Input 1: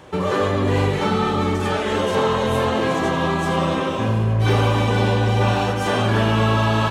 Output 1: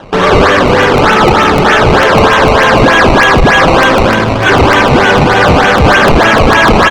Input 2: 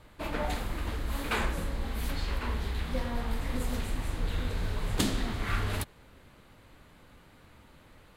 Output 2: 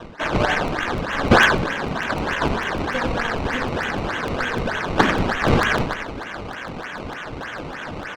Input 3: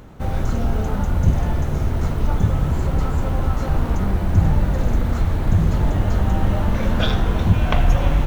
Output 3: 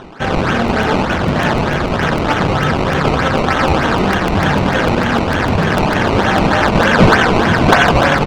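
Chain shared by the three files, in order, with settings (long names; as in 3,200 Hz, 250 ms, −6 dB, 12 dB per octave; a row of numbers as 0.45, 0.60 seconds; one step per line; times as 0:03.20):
high-pass filter 190 Hz 12 dB per octave
parametric band 1,600 Hz +15 dB 0.62 octaves
notch filter 1,400 Hz, Q 14
in parallel at −3 dB: comparator with hysteresis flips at −24.5 dBFS
on the sum: low-shelf EQ 370 Hz −7 dB
repeating echo 94 ms, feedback 34%, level −8 dB
sample-and-hold swept by an LFO 18×, swing 100% 3.3 Hz
gain into a clipping stage and back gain 13 dB
reversed playback
upward compression, threshold −30 dBFS
reversed playback
low-pass filter 3,500 Hz 12 dB per octave
regular buffer underruns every 0.15 s, samples 64, repeat, from 0:00.68
normalise the peak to −1.5 dBFS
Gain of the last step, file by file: +10.5, +11.0, +10.5 decibels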